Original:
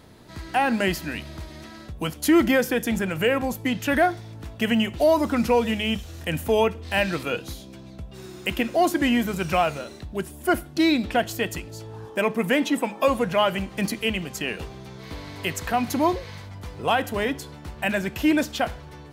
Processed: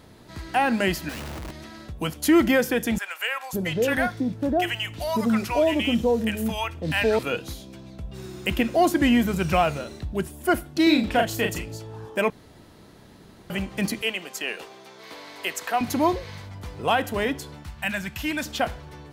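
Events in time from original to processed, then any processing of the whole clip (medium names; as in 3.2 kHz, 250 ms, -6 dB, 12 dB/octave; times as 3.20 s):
1.09–1.51 s: Schmitt trigger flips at -47 dBFS
2.98–7.19 s: bands offset in time highs, lows 550 ms, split 800 Hz
8.04–10.27 s: bass shelf 190 Hz +6.5 dB
10.83–11.77 s: doubling 36 ms -4 dB
12.30–13.50 s: room tone
14.02–15.81 s: high-pass 430 Hz
17.63–18.46 s: peaking EQ 420 Hz -14.5 dB 1.4 oct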